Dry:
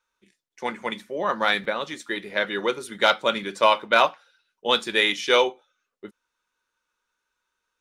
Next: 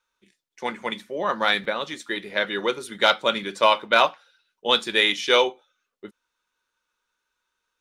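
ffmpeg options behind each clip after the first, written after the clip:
-af "equalizer=f=3600:t=o:w=0.77:g=2.5"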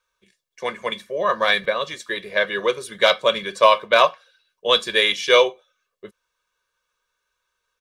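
-af "aecho=1:1:1.8:0.73,volume=1.12"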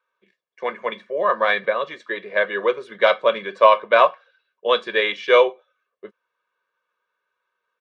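-af "highpass=250,lowpass=2100,volume=1.19"

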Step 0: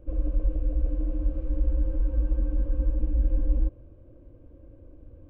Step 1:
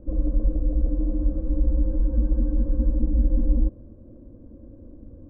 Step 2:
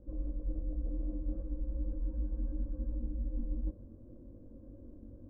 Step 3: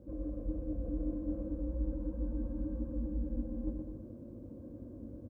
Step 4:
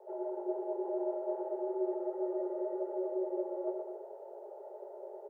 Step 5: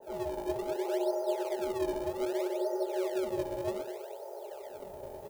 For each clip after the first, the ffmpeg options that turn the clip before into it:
-af "lowpass=1100,equalizer=f=220:w=2.7:g=14.5,volume=1.41"
-af "areverse,acompressor=threshold=0.0501:ratio=6,areverse,flanger=delay=19.5:depth=3.5:speed=2.7,volume=0.631"
-filter_complex "[0:a]highpass=76,asplit=2[s0][s1];[s1]aecho=0:1:120|210|277.5|328.1|366.1:0.631|0.398|0.251|0.158|0.1[s2];[s0][s2]amix=inputs=2:normalize=0,volume=1.68"
-af "afreqshift=320"
-filter_complex "[0:a]crystalizer=i=9.5:c=0,asplit=2[s0][s1];[s1]acrusher=samples=37:mix=1:aa=0.000001:lfo=1:lforange=59.2:lforate=0.64,volume=0.316[s2];[s0][s2]amix=inputs=2:normalize=0,adynamicequalizer=threshold=0.00447:dfrequency=1600:dqfactor=0.7:tfrequency=1600:tqfactor=0.7:attack=5:release=100:ratio=0.375:range=1.5:mode=boostabove:tftype=highshelf"

